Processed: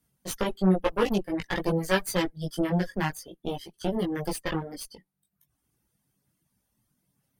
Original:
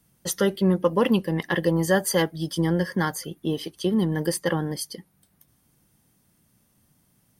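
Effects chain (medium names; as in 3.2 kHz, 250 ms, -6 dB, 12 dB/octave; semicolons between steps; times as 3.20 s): Chebyshev shaper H 3 -14 dB, 6 -19 dB, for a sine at -8 dBFS; chorus voices 4, 0.5 Hz, delay 18 ms, depth 3.7 ms; reverb removal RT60 0.81 s; trim +2.5 dB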